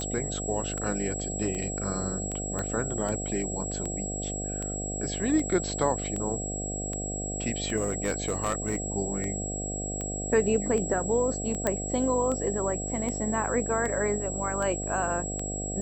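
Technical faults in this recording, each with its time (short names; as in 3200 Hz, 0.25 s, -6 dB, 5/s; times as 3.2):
buzz 50 Hz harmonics 15 -35 dBFS
tick 78 rpm -21 dBFS
tone 7700 Hz -34 dBFS
2.59 pop -19 dBFS
7.76–8.86 clipped -22 dBFS
11.67 pop -11 dBFS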